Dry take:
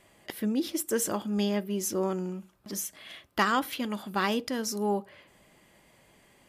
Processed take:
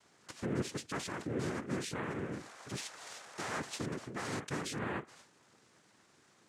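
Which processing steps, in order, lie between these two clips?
peak limiter -24.5 dBFS, peak gain reduction 11.5 dB; painted sound noise, 2.31–3.79 s, 470–2300 Hz -48 dBFS; noise-vocoded speech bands 3; trim -5 dB

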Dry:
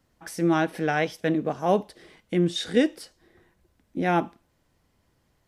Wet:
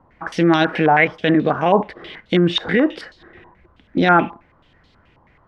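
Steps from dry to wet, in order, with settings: loudness maximiser +18.5 dB; step-sequenced low-pass 9.3 Hz 970–3900 Hz; trim -6.5 dB

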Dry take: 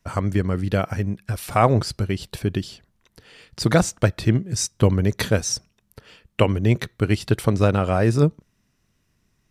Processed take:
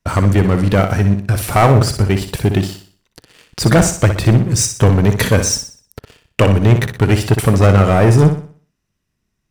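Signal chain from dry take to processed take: waveshaping leveller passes 3; dynamic bell 4.2 kHz, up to -6 dB, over -33 dBFS, Q 1.4; flutter echo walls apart 10.4 m, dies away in 0.44 s

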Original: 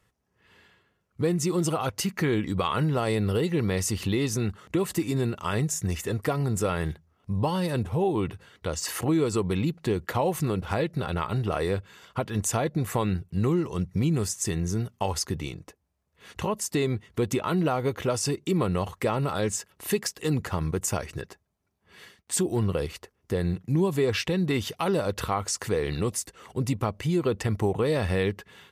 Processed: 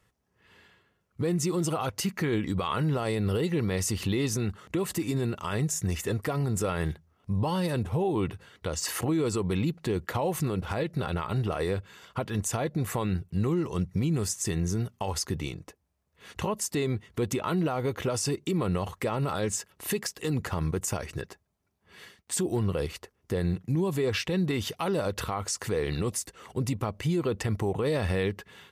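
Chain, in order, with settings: peak limiter -19.5 dBFS, peak gain reduction 6.5 dB

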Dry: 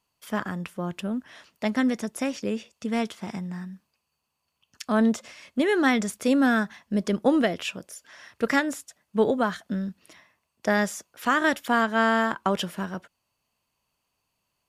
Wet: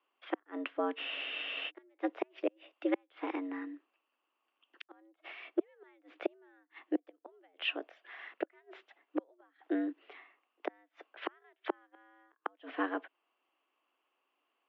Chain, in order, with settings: inverted gate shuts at -17 dBFS, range -41 dB; mistuned SSB +100 Hz 210–3000 Hz; spectral freeze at 1.01 s, 0.68 s

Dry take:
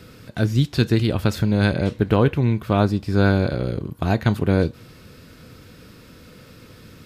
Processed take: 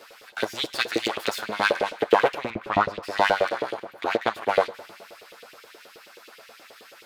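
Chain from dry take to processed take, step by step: comb filter that takes the minimum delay 9 ms; 3.85–4.41 s: treble shelf 5.3 kHz -8 dB; Schroeder reverb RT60 2.6 s, combs from 32 ms, DRR 16.5 dB; LFO high-pass saw up 9.4 Hz 400–3200 Hz; 2.50–3.03 s: RIAA curve playback

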